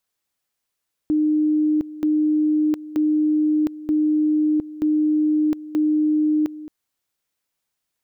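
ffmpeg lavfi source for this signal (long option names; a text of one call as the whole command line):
ffmpeg -f lavfi -i "aevalsrc='pow(10,(-15.5-16.5*gte(mod(t,0.93),0.71))/20)*sin(2*PI*305*t)':duration=5.58:sample_rate=44100" out.wav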